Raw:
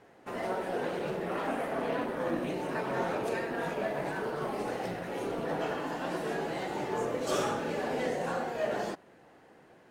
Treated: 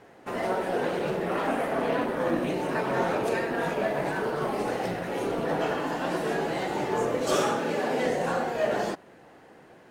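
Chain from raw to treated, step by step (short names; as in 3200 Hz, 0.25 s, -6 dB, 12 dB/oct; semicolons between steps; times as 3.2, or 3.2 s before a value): 7.37–8.05 HPF 140 Hz 12 dB/oct; gain +5.5 dB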